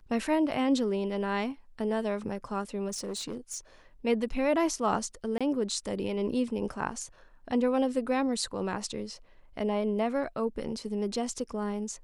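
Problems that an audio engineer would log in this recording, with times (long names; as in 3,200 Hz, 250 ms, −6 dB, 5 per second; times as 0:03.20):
0:02.88–0:03.59: clipping −31.5 dBFS
0:05.38–0:05.41: drop-out 26 ms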